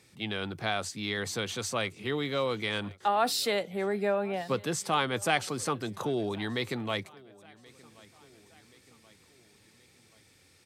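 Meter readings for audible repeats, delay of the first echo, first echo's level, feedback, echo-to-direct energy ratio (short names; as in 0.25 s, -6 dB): 3, 1.078 s, -24.0 dB, 54%, -22.5 dB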